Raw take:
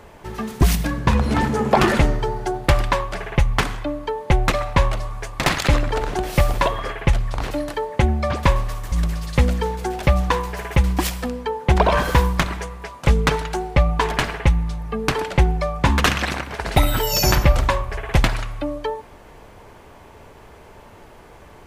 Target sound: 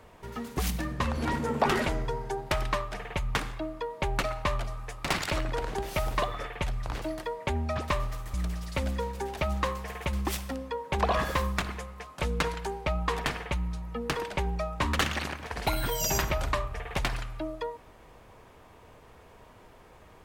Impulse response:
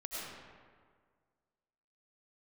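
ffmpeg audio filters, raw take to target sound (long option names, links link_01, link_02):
-filter_complex "[0:a]acrossover=split=340[link_01][link_02];[link_01]alimiter=limit=-16.5dB:level=0:latency=1[link_03];[link_03][link_02]amix=inputs=2:normalize=0,asetrate=47187,aresample=44100,volume=-9dB"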